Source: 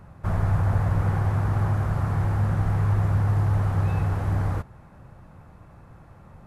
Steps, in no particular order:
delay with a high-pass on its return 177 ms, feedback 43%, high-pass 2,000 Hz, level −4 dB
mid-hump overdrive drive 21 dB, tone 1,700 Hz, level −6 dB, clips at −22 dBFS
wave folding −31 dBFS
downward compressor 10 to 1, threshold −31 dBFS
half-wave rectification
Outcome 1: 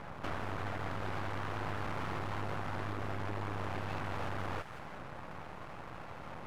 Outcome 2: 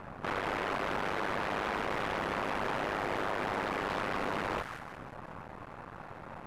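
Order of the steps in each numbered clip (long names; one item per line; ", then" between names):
downward compressor, then delay with a high-pass on its return, then wave folding, then mid-hump overdrive, then half-wave rectification
delay with a high-pass on its return, then half-wave rectification, then wave folding, then downward compressor, then mid-hump overdrive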